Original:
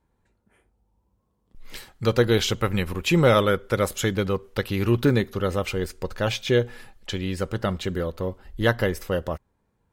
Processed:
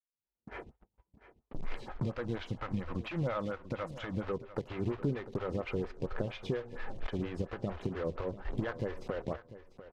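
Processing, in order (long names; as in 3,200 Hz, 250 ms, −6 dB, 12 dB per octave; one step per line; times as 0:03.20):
one scale factor per block 3 bits
camcorder AGC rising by 60 dB per second
noise gate −33 dBFS, range −40 dB
0:02.06–0:04.27: parametric band 410 Hz −13.5 dB 0.28 octaves
downward compressor 2.5 to 1, threshold −26 dBFS, peak gain reduction 8.5 dB
hard clipping −18 dBFS, distortion −21 dB
head-to-tape spacing loss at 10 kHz 31 dB
tuned comb filter 140 Hz, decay 0.19 s, harmonics odd, mix 40%
repeating echo 695 ms, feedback 18%, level −15 dB
phaser with staggered stages 4.3 Hz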